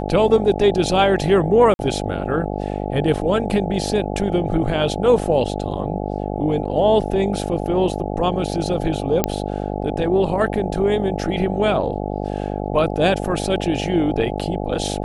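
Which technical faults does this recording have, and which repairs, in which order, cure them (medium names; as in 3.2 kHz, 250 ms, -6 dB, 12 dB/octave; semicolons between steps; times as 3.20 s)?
buzz 50 Hz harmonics 17 -25 dBFS
1.74–1.79 s: dropout 51 ms
9.24 s: pop -2 dBFS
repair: de-click; de-hum 50 Hz, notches 17; interpolate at 1.74 s, 51 ms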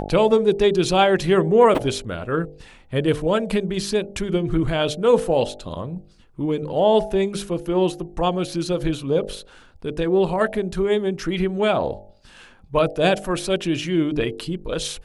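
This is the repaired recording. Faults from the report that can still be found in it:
nothing left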